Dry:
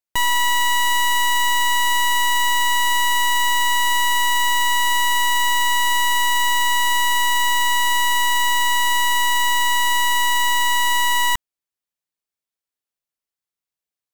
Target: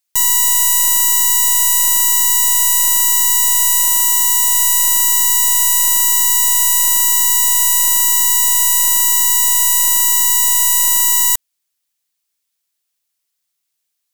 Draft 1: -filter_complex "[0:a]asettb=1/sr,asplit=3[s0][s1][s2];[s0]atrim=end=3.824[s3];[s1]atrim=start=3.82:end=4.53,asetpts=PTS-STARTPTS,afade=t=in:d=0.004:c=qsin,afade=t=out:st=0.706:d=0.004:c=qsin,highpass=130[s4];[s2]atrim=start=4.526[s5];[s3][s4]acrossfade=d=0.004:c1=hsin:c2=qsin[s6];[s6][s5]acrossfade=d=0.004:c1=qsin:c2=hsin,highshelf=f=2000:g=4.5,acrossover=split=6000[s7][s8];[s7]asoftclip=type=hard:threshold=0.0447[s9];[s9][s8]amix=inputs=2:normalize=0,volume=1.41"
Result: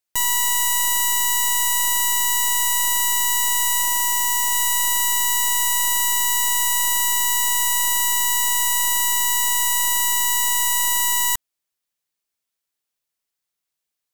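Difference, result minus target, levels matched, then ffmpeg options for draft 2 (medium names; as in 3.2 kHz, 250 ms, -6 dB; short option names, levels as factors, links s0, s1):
2 kHz band +7.5 dB
-filter_complex "[0:a]asettb=1/sr,asplit=3[s0][s1][s2];[s0]atrim=end=3.824[s3];[s1]atrim=start=3.82:end=4.53,asetpts=PTS-STARTPTS,afade=t=in:d=0.004:c=qsin,afade=t=out:st=0.706:d=0.004:c=qsin,highpass=130[s4];[s2]atrim=start=4.526[s5];[s3][s4]acrossfade=d=0.004:c1=hsin:c2=qsin[s6];[s6][s5]acrossfade=d=0.004:c1=qsin:c2=hsin,highshelf=f=2000:g=14,acrossover=split=6000[s7][s8];[s7]asoftclip=type=hard:threshold=0.0447[s9];[s9][s8]amix=inputs=2:normalize=0,volume=1.41"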